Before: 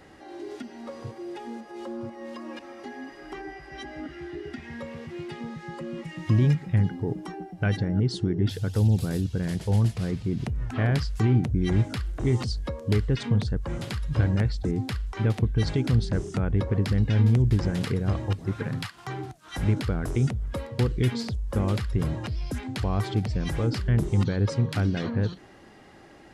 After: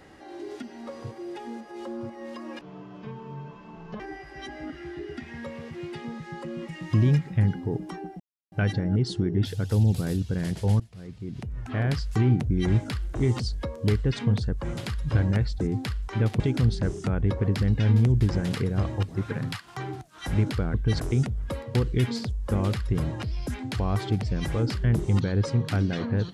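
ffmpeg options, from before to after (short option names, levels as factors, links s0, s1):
-filter_complex "[0:a]asplit=8[s0][s1][s2][s3][s4][s5][s6][s7];[s0]atrim=end=2.614[s8];[s1]atrim=start=2.61:end=3.36,asetpts=PTS-STARTPTS,asetrate=23814,aresample=44100[s9];[s2]atrim=start=3.356:end=7.56,asetpts=PTS-STARTPTS,afade=t=out:st=4.2:d=0.004:c=hsin,apad=pad_dur=0.32[s10];[s3]atrim=start=7.56:end=9.84,asetpts=PTS-STARTPTS,afade=t=in:d=0.004:c=hsin,afade=t=out:st=2.276:d=0.004:c=hsin:silence=0.0630957[s11];[s4]atrim=start=9.84:end=15.442,asetpts=PTS-STARTPTS,afade=t=in:d=1.35:silence=0.0630957[s12];[s5]atrim=start=15.698:end=20.042[s13];[s6]atrim=start=15.438:end=15.702[s14];[s7]atrim=start=20.038[s15];[s8][s9]acrossfade=d=0.004:c1=hsin:c2=hsin[s16];[s10][s11][s12]concat=n=3:v=0:a=1[s17];[s16][s17]acrossfade=d=0.004:c1=hsin:c2=hsin[s18];[s18][s13]acrossfade=d=0.004:c1=hsin:c2=hsin[s19];[s19][s14]acrossfade=d=0.004:c1=hsin:c2=hsin[s20];[s20][s15]acrossfade=d=0.004:c1=hsin:c2=hsin"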